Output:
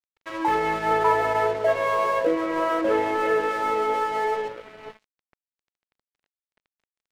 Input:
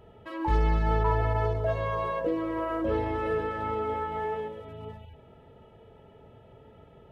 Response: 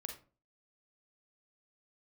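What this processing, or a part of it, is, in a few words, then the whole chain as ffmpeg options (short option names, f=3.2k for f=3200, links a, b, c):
pocket radio on a weak battery: -af "highpass=360,lowpass=3.6k,aeval=exprs='sgn(val(0))*max(abs(val(0))-0.00447,0)':c=same,equalizer=f=2.1k:t=o:w=0.5:g=4,volume=9dB"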